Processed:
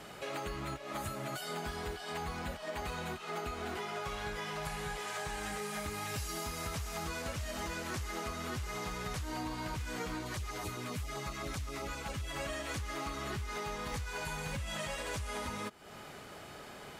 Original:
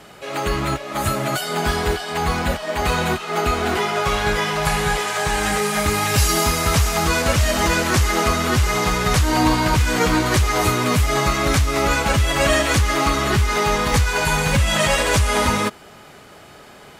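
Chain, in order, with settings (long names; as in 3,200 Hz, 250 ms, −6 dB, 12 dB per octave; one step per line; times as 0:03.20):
downward compressor 6 to 1, threshold −32 dBFS, peak gain reduction 18 dB
0:10.24–0:12.33: auto-filter notch saw down 7.6 Hz 230–2,500 Hz
level −5.5 dB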